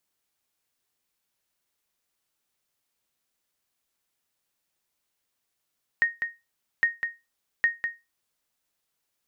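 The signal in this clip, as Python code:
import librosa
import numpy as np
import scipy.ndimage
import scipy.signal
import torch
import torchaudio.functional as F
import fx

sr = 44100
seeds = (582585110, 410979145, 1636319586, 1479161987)

y = fx.sonar_ping(sr, hz=1860.0, decay_s=0.23, every_s=0.81, pings=3, echo_s=0.2, echo_db=-7.0, level_db=-13.5)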